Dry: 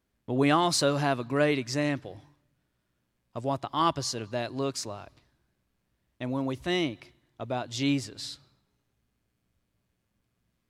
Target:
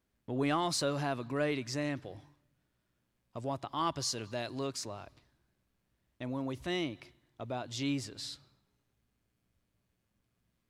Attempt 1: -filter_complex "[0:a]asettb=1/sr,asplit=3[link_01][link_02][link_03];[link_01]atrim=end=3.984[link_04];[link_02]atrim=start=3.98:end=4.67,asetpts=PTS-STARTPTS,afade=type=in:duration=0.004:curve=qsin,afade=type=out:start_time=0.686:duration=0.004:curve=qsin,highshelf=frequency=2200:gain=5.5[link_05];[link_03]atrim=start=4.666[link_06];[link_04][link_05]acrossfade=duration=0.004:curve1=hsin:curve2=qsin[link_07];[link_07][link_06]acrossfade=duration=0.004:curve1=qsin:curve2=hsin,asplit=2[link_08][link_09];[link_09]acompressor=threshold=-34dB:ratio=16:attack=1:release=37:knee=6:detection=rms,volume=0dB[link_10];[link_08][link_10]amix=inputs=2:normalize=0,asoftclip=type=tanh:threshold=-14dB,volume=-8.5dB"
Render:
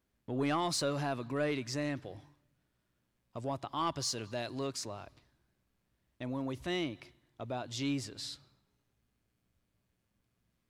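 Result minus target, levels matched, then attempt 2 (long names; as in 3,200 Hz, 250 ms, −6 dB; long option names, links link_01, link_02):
soft clipping: distortion +10 dB
-filter_complex "[0:a]asettb=1/sr,asplit=3[link_01][link_02][link_03];[link_01]atrim=end=3.984[link_04];[link_02]atrim=start=3.98:end=4.67,asetpts=PTS-STARTPTS,afade=type=in:duration=0.004:curve=qsin,afade=type=out:start_time=0.686:duration=0.004:curve=qsin,highshelf=frequency=2200:gain=5.5[link_05];[link_03]atrim=start=4.666[link_06];[link_04][link_05]acrossfade=duration=0.004:curve1=hsin:curve2=qsin[link_07];[link_07][link_06]acrossfade=duration=0.004:curve1=qsin:curve2=hsin,asplit=2[link_08][link_09];[link_09]acompressor=threshold=-34dB:ratio=16:attack=1:release=37:knee=6:detection=rms,volume=0dB[link_10];[link_08][link_10]amix=inputs=2:normalize=0,asoftclip=type=tanh:threshold=-7.5dB,volume=-8.5dB"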